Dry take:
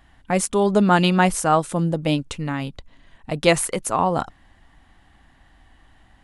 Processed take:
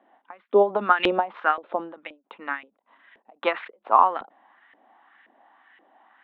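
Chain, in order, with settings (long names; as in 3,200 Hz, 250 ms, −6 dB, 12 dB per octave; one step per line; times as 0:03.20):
Chebyshev band-pass filter 210–3,700 Hz, order 5
auto-filter band-pass saw up 1.9 Hz 450–2,100 Hz
every ending faded ahead of time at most 230 dB per second
level +8.5 dB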